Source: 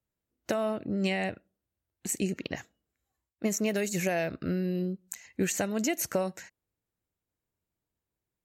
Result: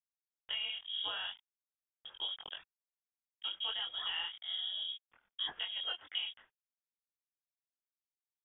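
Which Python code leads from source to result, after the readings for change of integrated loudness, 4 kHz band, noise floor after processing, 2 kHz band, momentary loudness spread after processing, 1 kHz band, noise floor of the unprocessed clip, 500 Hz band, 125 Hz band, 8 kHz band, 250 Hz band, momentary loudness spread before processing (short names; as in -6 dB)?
-6.5 dB, +9.5 dB, under -85 dBFS, -8.5 dB, 13 LU, -11.0 dB, under -85 dBFS, -28.0 dB, under -35 dB, under -40 dB, under -35 dB, 11 LU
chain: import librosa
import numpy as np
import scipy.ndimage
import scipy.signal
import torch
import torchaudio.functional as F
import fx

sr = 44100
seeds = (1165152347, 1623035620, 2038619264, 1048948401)

y = np.sign(x) * np.maximum(np.abs(x) - 10.0 ** (-48.5 / 20.0), 0.0)
y = fx.freq_invert(y, sr, carrier_hz=3500)
y = fx.chorus_voices(y, sr, voices=4, hz=1.3, base_ms=22, depth_ms=3.0, mix_pct=45)
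y = y * 10.0 ** (-6.0 / 20.0)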